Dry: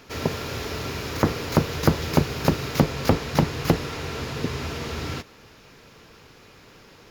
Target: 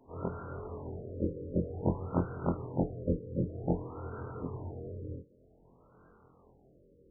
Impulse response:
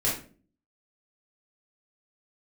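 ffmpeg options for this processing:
-af "afftfilt=real='re':imag='-im':win_size=2048:overlap=0.75,aexciter=amount=2.6:drive=2.3:freq=12000,afftfilt=real='re*lt(b*sr/1024,560*pow(1600/560,0.5+0.5*sin(2*PI*0.53*pts/sr)))':imag='im*lt(b*sr/1024,560*pow(1600/560,0.5+0.5*sin(2*PI*0.53*pts/sr)))':win_size=1024:overlap=0.75,volume=-5.5dB"

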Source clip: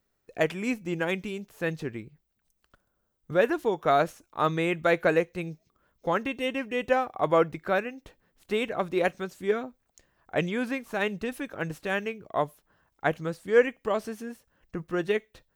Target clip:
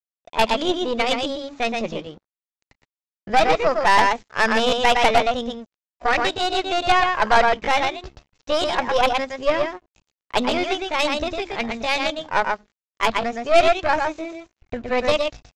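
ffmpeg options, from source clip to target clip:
ffmpeg -i in.wav -filter_complex "[0:a]bandreject=frequency=48.59:width_type=h:width=4,bandreject=frequency=97.18:width_type=h:width=4,bandreject=frequency=145.77:width_type=h:width=4,bandreject=frequency=194.36:width_type=h:width=4,bandreject=frequency=242.95:width_type=h:width=4,asubboost=boost=3.5:cutoff=84,asplit=2[link_01][link_02];[link_02]asoftclip=type=tanh:threshold=-22.5dB,volume=-9.5dB[link_03];[link_01][link_03]amix=inputs=2:normalize=0,aecho=1:1:119:0.631,aresample=11025,aeval=exprs='sgn(val(0))*max(abs(val(0))-0.00266,0)':channel_layout=same,aresample=44100,aeval=exprs='0.398*(cos(1*acos(clip(val(0)/0.398,-1,1)))-cos(1*PI/2))+0.0316*(cos(5*acos(clip(val(0)/0.398,-1,1)))-cos(5*PI/2))+0.0708*(cos(6*acos(clip(val(0)/0.398,-1,1)))-cos(6*PI/2))':channel_layout=same,asetrate=62367,aresample=44100,atempo=0.707107,volume=3dB" out.wav

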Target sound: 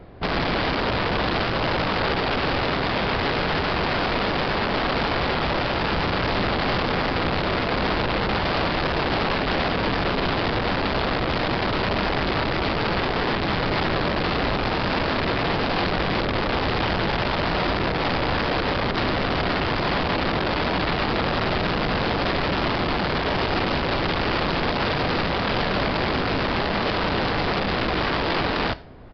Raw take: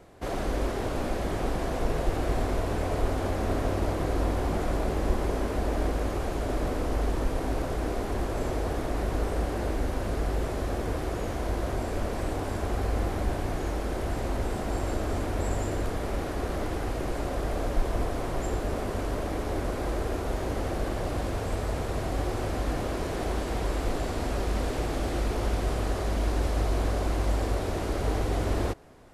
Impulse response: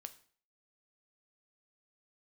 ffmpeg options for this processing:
-filter_complex "[0:a]bass=frequency=250:gain=6,treble=frequency=4000:gain=-4,acontrast=84,aeval=exprs='(mod(7.08*val(0)+1,2)-1)/7.08':channel_layout=same,asplit=2[link_01][link_02];[1:a]atrim=start_sample=2205,lowpass=7300[link_03];[link_02][link_03]afir=irnorm=-1:irlink=0,volume=6dB[link_04];[link_01][link_04]amix=inputs=2:normalize=0,aresample=11025,aresample=44100,volume=-7dB"

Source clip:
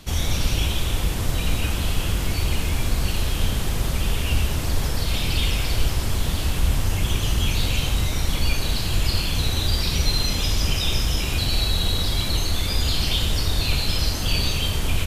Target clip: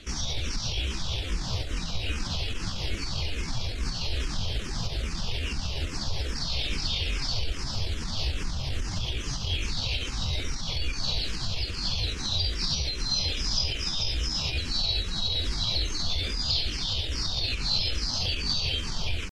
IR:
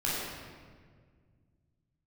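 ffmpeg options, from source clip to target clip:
-filter_complex "[0:a]alimiter=limit=-17.5dB:level=0:latency=1:release=200,lowpass=frequency=5100:width_type=q:width=3.1,atempo=0.78,asplit=2[link_01][link_02];[link_02]afreqshift=-2.4[link_03];[link_01][link_03]amix=inputs=2:normalize=1"

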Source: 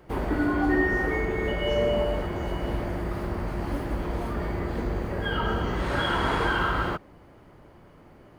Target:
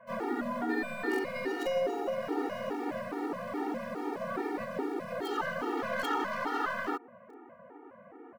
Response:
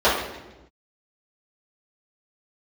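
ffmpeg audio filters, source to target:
-filter_complex "[0:a]asplit=2[link_01][link_02];[link_02]acompressor=threshold=-35dB:ratio=12,volume=0dB[link_03];[link_01][link_03]amix=inputs=2:normalize=0,alimiter=limit=-18.5dB:level=0:latency=1:release=233,highpass=frequency=300:width_type=q:width=0.5412,highpass=frequency=300:width_type=q:width=1.307,lowpass=frequency=3200:width_type=q:width=0.5176,lowpass=frequency=3200:width_type=q:width=0.7071,lowpass=frequency=3200:width_type=q:width=1.932,afreqshift=-54,asplit=3[link_04][link_05][link_06];[link_05]asetrate=37084,aresample=44100,atempo=1.18921,volume=-15dB[link_07];[link_06]asetrate=58866,aresample=44100,atempo=0.749154,volume=-7dB[link_08];[link_04][link_07][link_08]amix=inputs=3:normalize=0,acrossover=split=420|2000[link_09][link_10][link_11];[link_11]acrusher=bits=6:dc=4:mix=0:aa=0.000001[link_12];[link_09][link_10][link_12]amix=inputs=3:normalize=0,afftfilt=real='re*gt(sin(2*PI*2.4*pts/sr)*(1-2*mod(floor(b*sr/1024/240),2)),0)':imag='im*gt(sin(2*PI*2.4*pts/sr)*(1-2*mod(floor(b*sr/1024/240),2)),0)':win_size=1024:overlap=0.75"

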